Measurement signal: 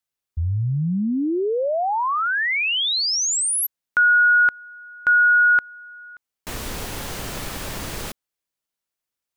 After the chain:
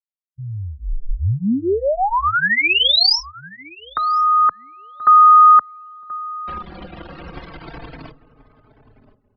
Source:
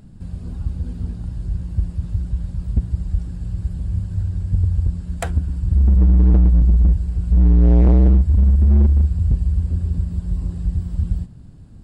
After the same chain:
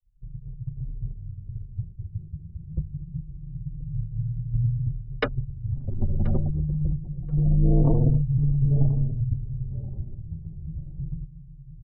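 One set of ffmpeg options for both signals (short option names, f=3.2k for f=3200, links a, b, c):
-filter_complex "[0:a]highpass=170,afftfilt=real='re*gte(hypot(re,im),0.0251)':imag='im*gte(hypot(re,im),0.0251)':win_size=1024:overlap=0.75,anlmdn=15.8,aemphasis=mode=production:type=50fm,afreqshift=150,asplit=2[a][b];[b]adelay=1030,lowpass=f=860:p=1,volume=-13.5dB,asplit=2[c][d];[d]adelay=1030,lowpass=f=860:p=1,volume=0.32,asplit=2[e][f];[f]adelay=1030,lowpass=f=860:p=1,volume=0.32[g];[a][c][e][g]amix=inputs=4:normalize=0,afreqshift=-360,aresample=11025,aresample=44100,asplit=2[h][i];[i]adelay=4,afreqshift=-0.25[j];[h][j]amix=inputs=2:normalize=1,volume=6.5dB"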